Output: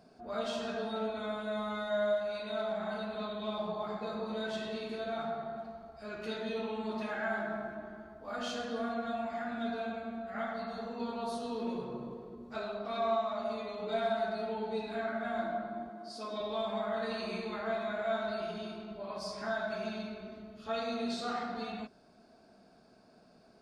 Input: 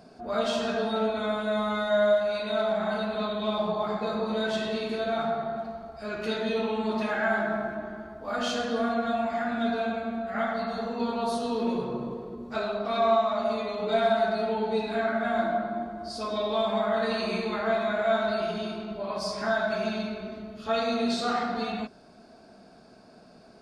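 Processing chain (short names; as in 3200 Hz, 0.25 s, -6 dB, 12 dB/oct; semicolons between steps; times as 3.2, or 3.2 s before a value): 15.89–16.41 HPF 160 Hz 24 dB/oct; gain -8.5 dB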